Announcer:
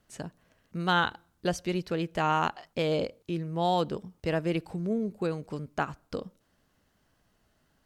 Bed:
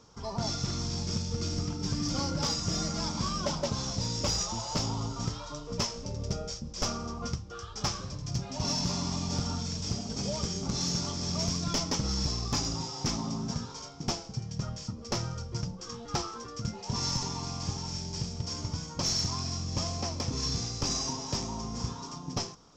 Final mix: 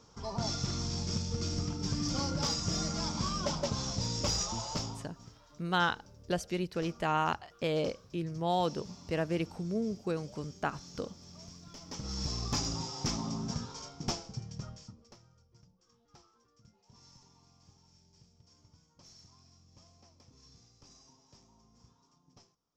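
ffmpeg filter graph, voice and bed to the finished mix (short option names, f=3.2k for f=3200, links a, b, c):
-filter_complex "[0:a]adelay=4850,volume=-3.5dB[a];[1:a]volume=15.5dB,afade=t=out:st=4.62:d=0.48:silence=0.125893,afade=t=in:st=11.8:d=0.64:silence=0.133352,afade=t=out:st=14.1:d=1.06:silence=0.0530884[b];[a][b]amix=inputs=2:normalize=0"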